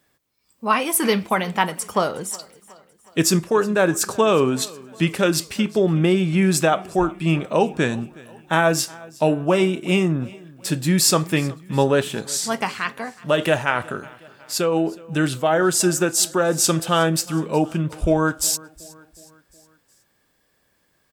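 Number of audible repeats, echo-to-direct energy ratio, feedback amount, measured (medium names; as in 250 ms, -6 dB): 3, -21.0 dB, 52%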